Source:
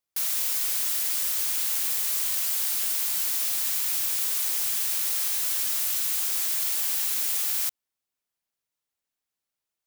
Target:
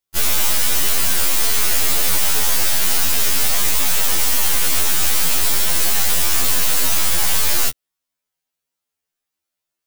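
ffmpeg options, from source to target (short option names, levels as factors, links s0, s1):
-af "aeval=exprs='0.224*(cos(1*acos(clip(val(0)/0.224,-1,1)))-cos(1*PI/2))+0.1*(cos(6*acos(clip(val(0)/0.224,-1,1)))-cos(6*PI/2))':c=same,afftfilt=real='re*2*eq(mod(b,4),0)':imag='im*2*eq(mod(b,4),0)':win_size=2048:overlap=0.75,volume=2"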